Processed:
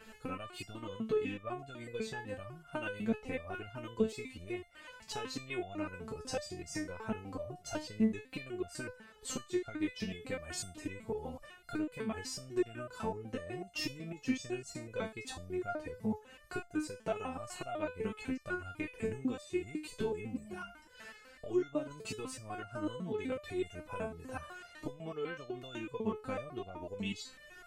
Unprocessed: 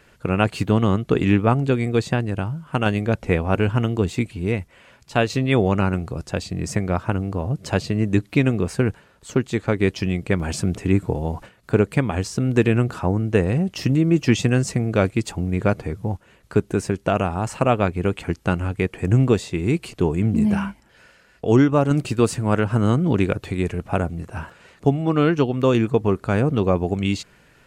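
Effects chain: compression 5:1, threshold -32 dBFS, peak gain reduction 19 dB; resonator arpeggio 8 Hz 220–700 Hz; trim +13.5 dB

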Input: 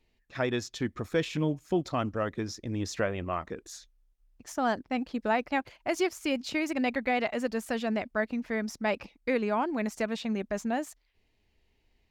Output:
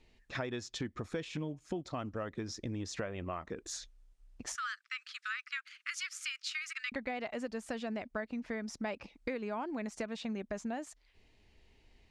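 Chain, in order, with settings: 4.55–6.92 s: steep high-pass 1.2 kHz 96 dB/octave; compression 5:1, threshold -43 dBFS, peak gain reduction 18.5 dB; low-pass 9.7 kHz 24 dB/octave; trim +6 dB

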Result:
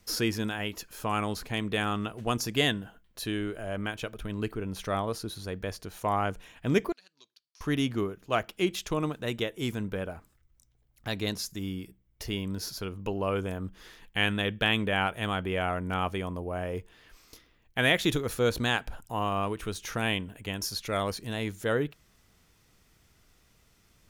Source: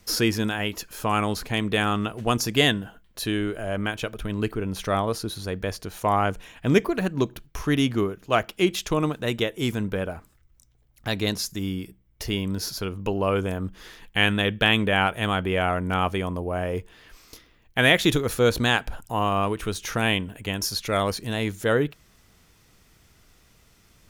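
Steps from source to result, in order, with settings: 6.92–7.61 s: band-pass filter 4.7 kHz, Q 5.8; trim -6 dB

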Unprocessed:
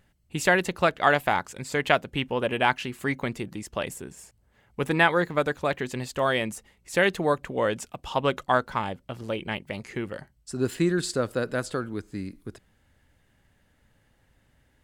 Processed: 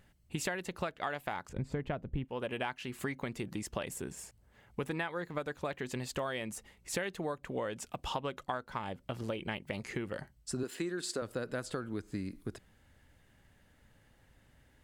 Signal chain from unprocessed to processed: 1.49–2.25 s: tilt EQ -4.5 dB/octave; 10.63–11.22 s: high-pass 260 Hz 12 dB/octave; compression 10:1, threshold -33 dBFS, peak gain reduction 19.5 dB

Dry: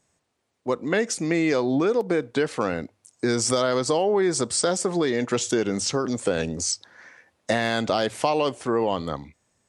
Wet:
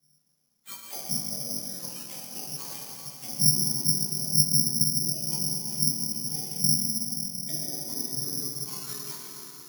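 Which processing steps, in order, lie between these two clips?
spectrum inverted on a logarithmic axis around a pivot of 1.1 kHz; high-pass 150 Hz 24 dB/octave; tone controls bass +5 dB, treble -4 dB; in parallel at -2 dB: compression, threshold -31 dBFS, peak gain reduction 20.5 dB; on the sum: bit crusher 11-bit; chorus voices 6, 0.53 Hz, delay 18 ms, depth 4.1 ms; low-pass that closes with the level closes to 520 Hz, closed at -22 dBFS; distance through air 270 m; on a send: thinning echo 149 ms, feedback 84%, level -15 dB; on the sum: plate-style reverb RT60 3.9 s, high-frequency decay 0.75×, DRR -2 dB; careless resampling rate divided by 8×, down none, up zero stuff; trim -16.5 dB

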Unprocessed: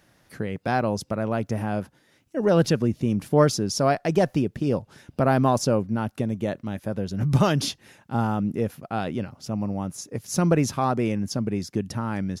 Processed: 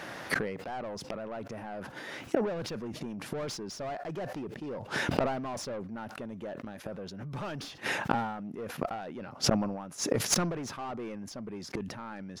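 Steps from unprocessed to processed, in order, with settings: overdrive pedal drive 27 dB, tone 1.6 kHz, clips at -5.5 dBFS; inverted gate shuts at -18 dBFS, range -27 dB; decay stretcher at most 53 dB/s; trim +4 dB

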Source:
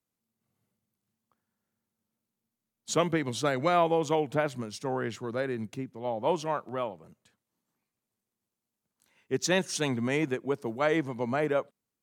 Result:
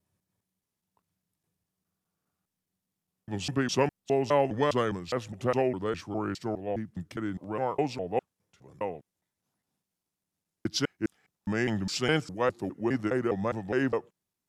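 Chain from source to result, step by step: slices played last to first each 170 ms, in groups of 4; tape speed -17%

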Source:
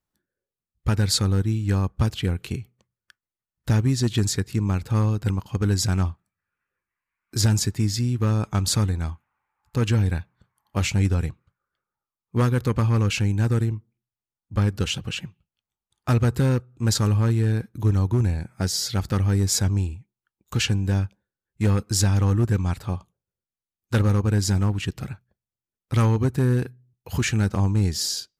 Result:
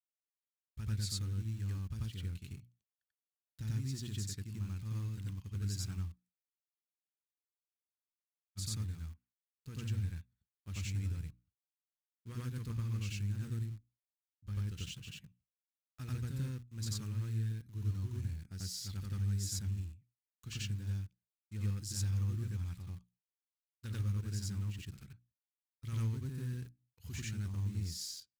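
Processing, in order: hum notches 60/120/180/240/300 Hz; in parallel at -8.5 dB: bit crusher 5-bit; on the sum: expander -45 dBFS; amplifier tone stack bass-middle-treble 6-0-2; on a send: reverse echo 90 ms -3 dB; on the sum: spectral freeze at 6.42 s, 2.15 s; trim -6 dB

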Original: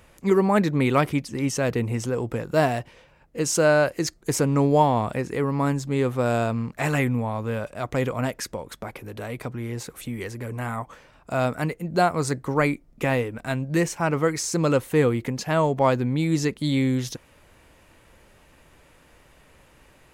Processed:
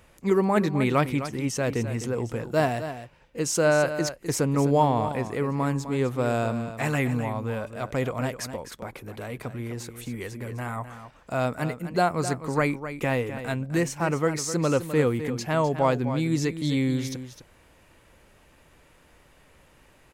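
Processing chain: delay 256 ms -11 dB; trim -2.5 dB

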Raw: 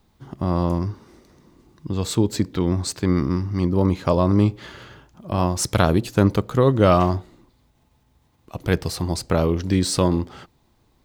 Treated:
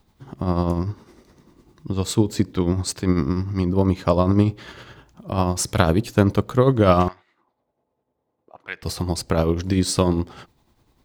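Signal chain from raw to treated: tremolo 10 Hz, depth 48%; 7.08–8.83 s: auto-wah 480–2100 Hz, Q 2.2, up, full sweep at -29 dBFS; trim +2 dB

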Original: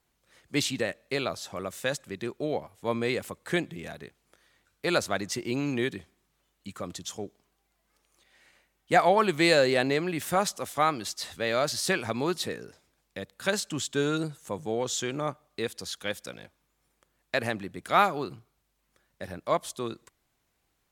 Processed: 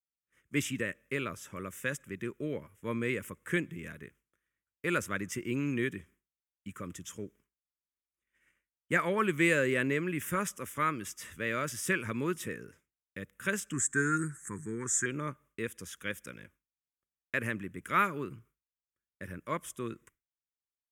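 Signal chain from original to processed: static phaser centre 1.8 kHz, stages 4; expander -55 dBFS; 13.73–15.06 s: FFT filter 410 Hz 0 dB, 620 Hz -29 dB, 920 Hz -1 dB, 1.8 kHz +11 dB, 3 kHz -20 dB, 8.1 kHz +14 dB, 14 kHz -8 dB; trim -1 dB

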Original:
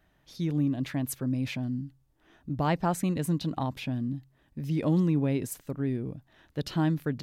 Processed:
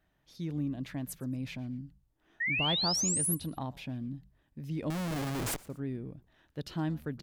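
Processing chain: 2.40–3.35 s: painted sound rise 1.8–12 kHz -24 dBFS; 4.90–5.66 s: Schmitt trigger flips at -41.5 dBFS; frequency-shifting echo 117 ms, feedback 31%, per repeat -90 Hz, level -22 dB; trim -7 dB

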